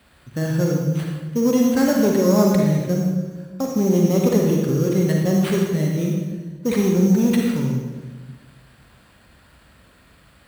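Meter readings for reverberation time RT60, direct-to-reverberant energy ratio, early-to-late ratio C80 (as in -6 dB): 1.3 s, -1.0 dB, 3.0 dB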